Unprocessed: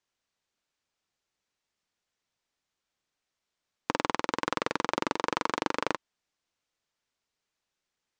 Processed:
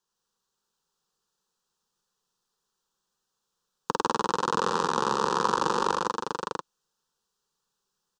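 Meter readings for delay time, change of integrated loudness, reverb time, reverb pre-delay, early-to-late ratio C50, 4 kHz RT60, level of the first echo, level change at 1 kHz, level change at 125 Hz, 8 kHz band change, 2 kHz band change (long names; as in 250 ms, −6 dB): 102 ms, +4.0 dB, no reverb audible, no reverb audible, no reverb audible, no reverb audible, −4.5 dB, +6.5 dB, +5.5 dB, +6.5 dB, −0.5 dB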